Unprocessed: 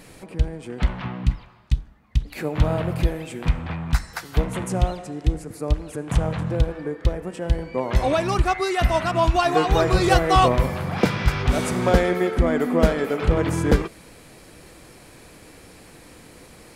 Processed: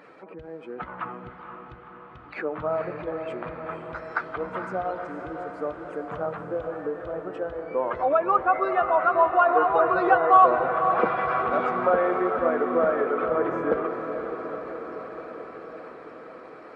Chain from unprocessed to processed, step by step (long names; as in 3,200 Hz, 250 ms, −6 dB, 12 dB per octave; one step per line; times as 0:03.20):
expanding power law on the bin magnitudes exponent 1.5
high-pass filter 510 Hz 12 dB per octave
parametric band 1,300 Hz +12 dB 0.58 octaves
in parallel at −3 dB: downward compressor, threshold −28 dBFS, peak gain reduction 18 dB
on the sum: treble cut that deepens with the level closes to 2,700 Hz, closed at −15.5 dBFS
head-to-tape spacing loss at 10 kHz 33 dB
on a send: feedback delay with all-pass diffusion 494 ms, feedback 70%, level −8 dB